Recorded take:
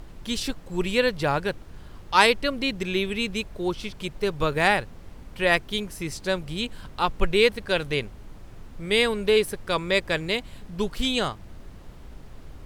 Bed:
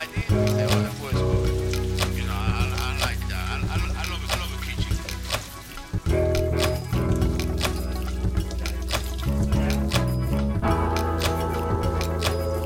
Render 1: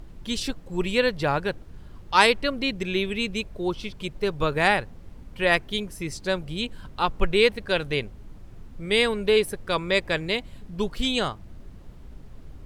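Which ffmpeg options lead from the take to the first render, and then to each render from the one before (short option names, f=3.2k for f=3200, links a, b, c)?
-af "afftdn=nr=6:nf=-45"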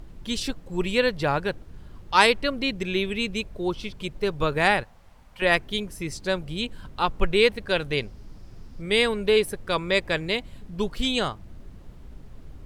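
-filter_complex "[0:a]asettb=1/sr,asplit=3[a][b][c];[a]atrim=end=4.834[d];[b]atrim=start=4.83:end=5.42,asetpts=PTS-STARTPTS,afade=t=in:d=0.004:c=qsin,afade=t=out:st=0.586:d=0.004:c=qsin,lowshelf=f=520:t=q:w=1.5:g=-10.5[e];[c]atrim=start=5.416[f];[d][e]acrossfade=d=0.004:c1=hsin:c2=qsin[g];[g][f]acrossfade=d=0.004:c1=qsin:c2=hsin,asettb=1/sr,asplit=3[h][i][j];[h]atrim=end=7.974[k];[i]atrim=start=7.97:end=8.82,asetpts=PTS-STARTPTS,afade=t=in:d=0.004:c=qsin,afade=t=out:st=0.846:d=0.004:c=qsin,equalizer=f=5.1k:t=o:w=0.48:g=10.5[l];[j]atrim=start=8.816[m];[k][l]acrossfade=d=0.004:c1=hsin:c2=qsin[n];[n][m]acrossfade=d=0.004:c1=qsin:c2=hsin"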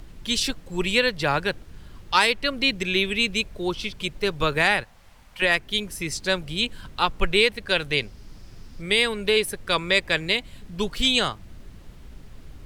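-filter_complex "[0:a]acrossover=split=320|1500[a][b][c];[c]acontrast=84[d];[a][b][d]amix=inputs=3:normalize=0,alimiter=limit=-7.5dB:level=0:latency=1:release=378"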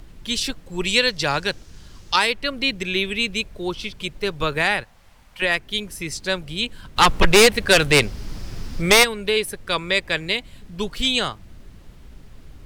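-filter_complex "[0:a]asettb=1/sr,asplit=3[a][b][c];[a]atrim=end=0.854[d];[b]atrim=start=0.85:end=2.16,asetpts=PTS-STARTPTS,afade=t=in:d=0.004:c=qsin,afade=t=out:st=1.306:d=0.004:c=qsin,equalizer=f=5.9k:w=1:g=11.5[e];[c]atrim=start=2.156[f];[d][e]acrossfade=d=0.004:c1=hsin:c2=qsin[g];[g][f]acrossfade=d=0.004:c1=qsin:c2=hsin,asplit=3[h][i][j];[h]afade=t=out:st=6.96:d=0.02[k];[i]aeval=exprs='0.447*sin(PI/2*2.51*val(0)/0.447)':c=same,afade=t=in:st=6.96:d=0.02,afade=t=out:st=9.03:d=0.02[l];[j]afade=t=in:st=9.03:d=0.02[m];[k][l][m]amix=inputs=3:normalize=0"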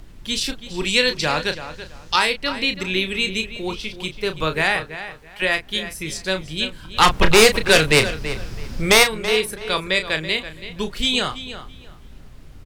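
-filter_complex "[0:a]asplit=2[a][b];[b]adelay=32,volume=-8.5dB[c];[a][c]amix=inputs=2:normalize=0,asplit=2[d][e];[e]adelay=331,lowpass=f=4.3k:p=1,volume=-12dB,asplit=2[f][g];[g]adelay=331,lowpass=f=4.3k:p=1,volume=0.24,asplit=2[h][i];[i]adelay=331,lowpass=f=4.3k:p=1,volume=0.24[j];[d][f][h][j]amix=inputs=4:normalize=0"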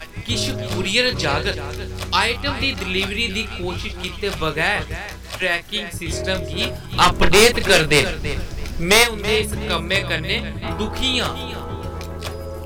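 -filter_complex "[1:a]volume=-5dB[a];[0:a][a]amix=inputs=2:normalize=0"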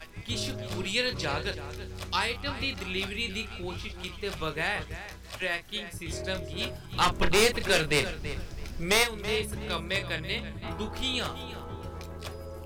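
-af "volume=-10.5dB"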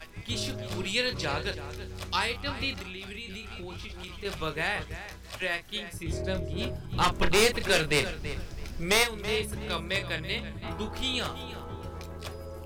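-filter_complex "[0:a]asettb=1/sr,asplit=3[a][b][c];[a]atrim=end=2.814[d];[b]atrim=start=2.81:end=4.25,asetpts=PTS-STARTPTS,afade=t=in:d=0.004:c=qsin,afade=t=out:st=1.436:d=0.004:c=qsin,acompressor=threshold=-35dB:ratio=12:attack=3.2:release=140:knee=1:detection=peak[e];[c]atrim=start=4.246[f];[d][e]acrossfade=d=0.004:c1=hsin:c2=qsin[g];[g][f]acrossfade=d=0.004:c1=qsin:c2=hsin,asettb=1/sr,asplit=3[h][i][j];[h]atrim=end=6.034[k];[i]atrim=start=6.03:end=7.04,asetpts=PTS-STARTPTS,afade=t=in:d=0.004:c=qsin,afade=t=out:st=1.006:d=0.004:c=qsin,tiltshelf=f=790:g=5[l];[j]atrim=start=7.036[m];[k][l]acrossfade=d=0.004:c1=hsin:c2=qsin[n];[n][m]acrossfade=d=0.004:c1=qsin:c2=hsin"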